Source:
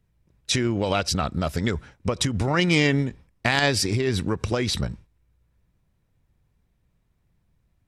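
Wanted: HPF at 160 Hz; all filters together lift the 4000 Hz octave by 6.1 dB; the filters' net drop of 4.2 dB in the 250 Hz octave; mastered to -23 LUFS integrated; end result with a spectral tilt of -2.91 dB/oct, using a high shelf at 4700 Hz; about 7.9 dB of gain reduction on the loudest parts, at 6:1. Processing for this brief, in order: HPF 160 Hz; bell 250 Hz -4.5 dB; bell 4000 Hz +4 dB; high shelf 4700 Hz +7 dB; compressor 6:1, threshold -22 dBFS; gain +4.5 dB

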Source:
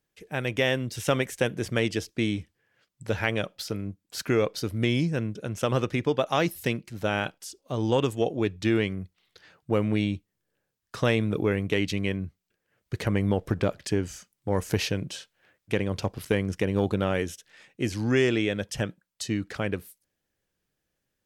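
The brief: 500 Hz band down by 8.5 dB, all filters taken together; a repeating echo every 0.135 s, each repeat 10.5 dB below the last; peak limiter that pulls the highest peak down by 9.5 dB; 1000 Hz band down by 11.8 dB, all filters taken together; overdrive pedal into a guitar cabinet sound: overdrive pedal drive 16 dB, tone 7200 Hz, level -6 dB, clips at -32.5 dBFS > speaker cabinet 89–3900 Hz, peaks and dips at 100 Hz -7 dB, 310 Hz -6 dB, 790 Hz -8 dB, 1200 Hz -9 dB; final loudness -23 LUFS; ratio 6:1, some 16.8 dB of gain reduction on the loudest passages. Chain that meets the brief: bell 500 Hz -7.5 dB; bell 1000 Hz -5 dB; compressor 6:1, threshold -41 dBFS; limiter -35 dBFS; feedback echo 0.135 s, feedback 30%, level -10.5 dB; overdrive pedal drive 16 dB, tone 7200 Hz, level -6 dB, clips at -32.5 dBFS; speaker cabinet 89–3900 Hz, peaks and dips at 100 Hz -7 dB, 310 Hz -6 dB, 790 Hz -8 dB, 1200 Hz -9 dB; gain +23.5 dB

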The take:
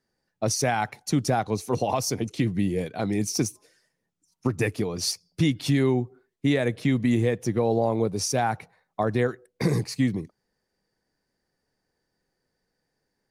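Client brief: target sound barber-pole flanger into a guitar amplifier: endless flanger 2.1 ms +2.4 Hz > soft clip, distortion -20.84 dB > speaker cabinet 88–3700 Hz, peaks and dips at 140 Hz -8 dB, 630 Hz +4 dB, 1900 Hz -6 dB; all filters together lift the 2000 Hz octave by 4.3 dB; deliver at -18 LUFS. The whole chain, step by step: bell 2000 Hz +9 dB; endless flanger 2.1 ms +2.4 Hz; soft clip -16 dBFS; speaker cabinet 88–3700 Hz, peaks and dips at 140 Hz -8 dB, 630 Hz +4 dB, 1900 Hz -6 dB; gain +12 dB

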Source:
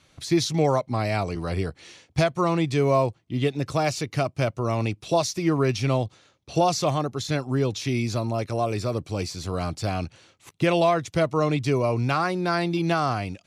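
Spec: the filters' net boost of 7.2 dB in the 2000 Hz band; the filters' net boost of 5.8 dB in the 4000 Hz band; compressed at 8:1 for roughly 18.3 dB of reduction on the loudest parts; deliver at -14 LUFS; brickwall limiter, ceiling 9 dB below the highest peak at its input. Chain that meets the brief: bell 2000 Hz +8 dB; bell 4000 Hz +5 dB; compressor 8:1, threshold -35 dBFS; gain +27.5 dB; limiter -4 dBFS

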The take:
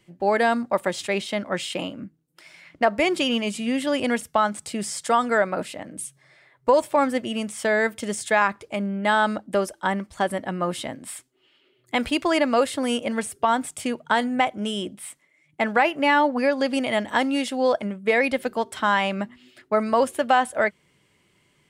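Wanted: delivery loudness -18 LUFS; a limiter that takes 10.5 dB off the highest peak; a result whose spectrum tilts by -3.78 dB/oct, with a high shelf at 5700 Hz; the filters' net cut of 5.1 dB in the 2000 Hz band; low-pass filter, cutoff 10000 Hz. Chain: LPF 10000 Hz; bell 2000 Hz -6 dB; high shelf 5700 Hz -5.5 dB; gain +10 dB; limiter -7.5 dBFS

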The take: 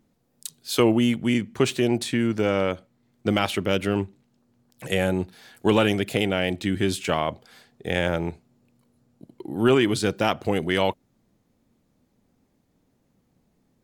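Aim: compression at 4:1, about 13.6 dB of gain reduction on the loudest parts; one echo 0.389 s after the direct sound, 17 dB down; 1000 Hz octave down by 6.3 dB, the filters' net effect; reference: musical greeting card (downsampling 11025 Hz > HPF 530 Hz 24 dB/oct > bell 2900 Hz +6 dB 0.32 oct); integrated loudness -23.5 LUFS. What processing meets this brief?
bell 1000 Hz -9 dB; compressor 4:1, threshold -32 dBFS; echo 0.389 s -17 dB; downsampling 11025 Hz; HPF 530 Hz 24 dB/oct; bell 2900 Hz +6 dB 0.32 oct; gain +16 dB

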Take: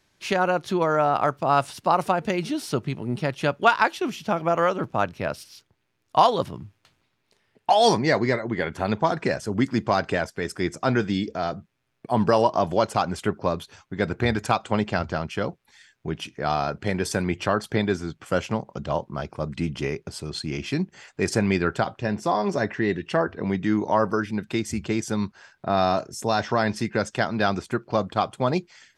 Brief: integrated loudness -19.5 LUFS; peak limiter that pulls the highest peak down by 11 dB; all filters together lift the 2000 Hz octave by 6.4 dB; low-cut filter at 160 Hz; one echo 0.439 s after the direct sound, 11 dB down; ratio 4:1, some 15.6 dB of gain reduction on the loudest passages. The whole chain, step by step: HPF 160 Hz; bell 2000 Hz +8.5 dB; compressor 4:1, threshold -30 dBFS; limiter -23.5 dBFS; echo 0.439 s -11 dB; gain +16.5 dB

